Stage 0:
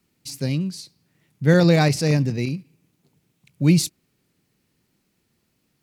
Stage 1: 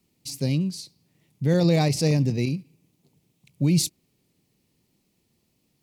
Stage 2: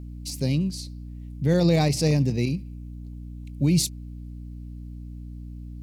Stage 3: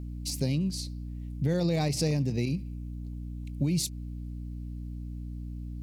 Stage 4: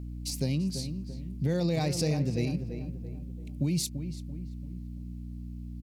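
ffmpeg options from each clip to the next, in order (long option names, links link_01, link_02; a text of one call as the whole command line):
ffmpeg -i in.wav -af "equalizer=frequency=1500:width=2:gain=-10.5,alimiter=limit=-12.5dB:level=0:latency=1:release=107" out.wav
ffmpeg -i in.wav -af "aeval=exprs='val(0)+0.0158*(sin(2*PI*60*n/s)+sin(2*PI*2*60*n/s)/2+sin(2*PI*3*60*n/s)/3+sin(2*PI*4*60*n/s)/4+sin(2*PI*5*60*n/s)/5)':channel_layout=same" out.wav
ffmpeg -i in.wav -af "acompressor=threshold=-24dB:ratio=6" out.wav
ffmpeg -i in.wav -filter_complex "[0:a]asplit=2[link_01][link_02];[link_02]adelay=338,lowpass=frequency=1700:poles=1,volume=-8.5dB,asplit=2[link_03][link_04];[link_04]adelay=338,lowpass=frequency=1700:poles=1,volume=0.45,asplit=2[link_05][link_06];[link_06]adelay=338,lowpass=frequency=1700:poles=1,volume=0.45,asplit=2[link_07][link_08];[link_08]adelay=338,lowpass=frequency=1700:poles=1,volume=0.45,asplit=2[link_09][link_10];[link_10]adelay=338,lowpass=frequency=1700:poles=1,volume=0.45[link_11];[link_01][link_03][link_05][link_07][link_09][link_11]amix=inputs=6:normalize=0,volume=-1dB" out.wav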